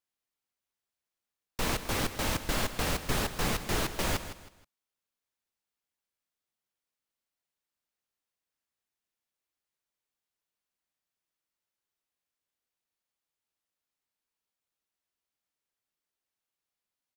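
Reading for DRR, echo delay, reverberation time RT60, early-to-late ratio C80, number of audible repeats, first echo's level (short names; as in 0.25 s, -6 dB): none, 0.159 s, none, none, 3, -12.0 dB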